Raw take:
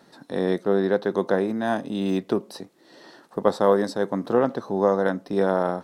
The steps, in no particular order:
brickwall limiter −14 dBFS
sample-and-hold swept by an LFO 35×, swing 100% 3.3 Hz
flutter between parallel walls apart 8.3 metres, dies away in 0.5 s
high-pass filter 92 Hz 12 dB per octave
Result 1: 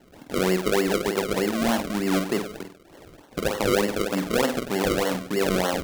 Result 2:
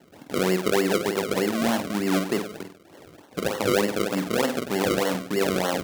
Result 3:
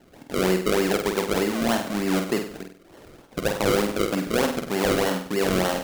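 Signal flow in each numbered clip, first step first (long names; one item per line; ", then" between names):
high-pass filter, then brickwall limiter, then flutter between parallel walls, then sample-and-hold swept by an LFO
brickwall limiter, then flutter between parallel walls, then sample-and-hold swept by an LFO, then high-pass filter
high-pass filter, then sample-and-hold swept by an LFO, then brickwall limiter, then flutter between parallel walls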